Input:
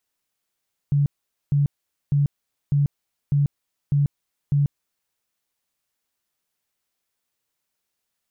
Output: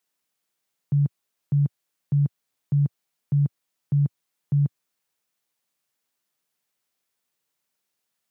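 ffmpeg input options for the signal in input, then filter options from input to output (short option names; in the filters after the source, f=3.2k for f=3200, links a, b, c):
-f lavfi -i "aevalsrc='0.168*sin(2*PI*143*mod(t,0.6))*lt(mod(t,0.6),20/143)':d=4.2:s=44100"
-af "highpass=f=110:w=0.5412,highpass=f=110:w=1.3066"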